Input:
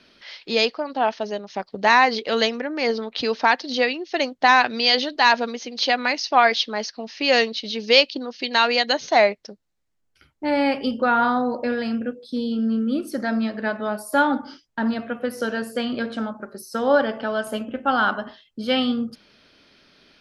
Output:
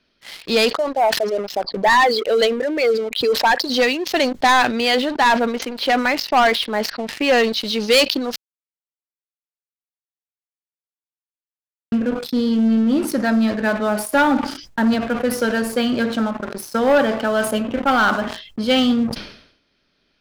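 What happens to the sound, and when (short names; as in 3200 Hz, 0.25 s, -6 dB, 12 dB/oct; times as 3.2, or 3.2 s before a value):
0.76–3.7 formant sharpening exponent 2
4.71–7.44 LPF 2600 Hz
8.36–11.92 mute
whole clip: low shelf 77 Hz +10 dB; sample leveller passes 3; sustainer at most 85 dB/s; gain -5.5 dB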